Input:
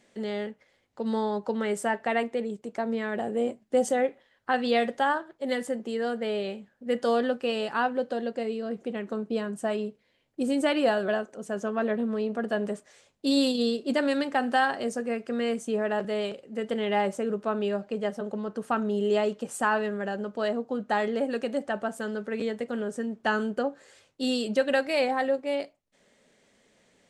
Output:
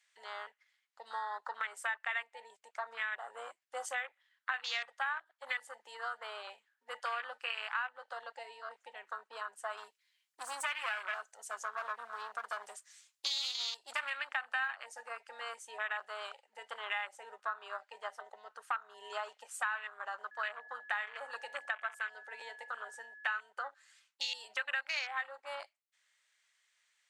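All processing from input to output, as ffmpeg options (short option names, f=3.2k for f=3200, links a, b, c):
-filter_complex "[0:a]asettb=1/sr,asplit=3[a][b][c];[a]atrim=end=9.774[d];[b]atrim=start=9.77:end=14.1,asetpts=PTS-STARTPTS,afade=t=in:d=0.004:c=qsin,afade=t=out:st=4.326:d=0.004:c=qsin,bass=f=250:g=5,treble=f=4k:g=10,aeval=exprs='clip(val(0),-1,0.0422)':c=same[e];[c]atrim=start=14.096[f];[d][e]acrossfade=d=0.004:c1=hsin:c2=qsin[g];[g][f]acrossfade=d=0.004:c1=qsin:c2=hsin,asettb=1/sr,asplit=3[h][i][j];[h]atrim=end=20.314[k];[i]atrim=start=20.31:end=23.33,asetpts=PTS-STARTPTS,afade=t=in:d=0.004:c=qsin,afade=t=out:st=3.016:d=0.004:c=qsin,aeval=exprs='val(0)+0.00631*sin(2*PI*1700*n/s)':c=same,asplit=2[l][m];[m]adelay=67,lowpass=f=1.5k:p=1,volume=-19.5dB,asplit=2[n][o];[o]adelay=67,lowpass=f=1.5k:p=1,volume=0.52,asplit=2[p][q];[q]adelay=67,lowpass=f=1.5k:p=1,volume=0.52,asplit=2[r][s];[s]adelay=67,lowpass=f=1.5k:p=1,volume=0.52[t];[l][n][p][r][t]amix=inputs=5:normalize=0,atrim=end_sample=133182[u];[j]atrim=start=23.326[v];[k][u]acrossfade=d=0.004:c1=hsin:c2=qsin[w];[w][v]acrossfade=d=0.004:c1=qsin:c2=hsin,afwtdn=0.0178,highpass=f=1.2k:w=0.5412,highpass=f=1.2k:w=1.3066,acompressor=threshold=-44dB:ratio=4,volume=9dB"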